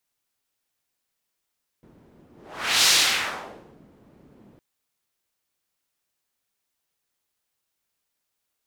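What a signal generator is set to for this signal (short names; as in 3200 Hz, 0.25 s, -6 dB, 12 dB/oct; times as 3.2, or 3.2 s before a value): whoosh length 2.76 s, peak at 1.04, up 0.58 s, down 1.01 s, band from 240 Hz, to 4600 Hz, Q 1.1, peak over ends 36.5 dB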